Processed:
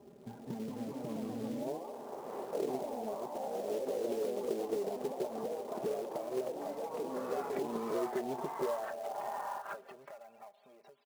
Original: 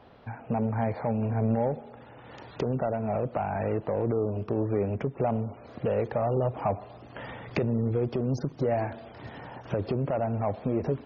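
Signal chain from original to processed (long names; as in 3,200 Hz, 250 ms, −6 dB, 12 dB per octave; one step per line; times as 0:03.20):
parametric band 97 Hz +12.5 dB 1.9 octaves, from 0:01.62 730 Hz
comb filter 5 ms, depth 90%
dynamic equaliser 2,000 Hz, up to −3 dB, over −29 dBFS, Q 0.72
downward compressor 12 to 1, threshold −30 dBFS, peak gain reduction 21.5 dB
band-pass filter sweep 350 Hz → 4,000 Hz, 0:08.46–0:10.66
floating-point word with a short mantissa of 2 bits
delay with pitch and tempo change per echo 233 ms, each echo +2 semitones, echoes 3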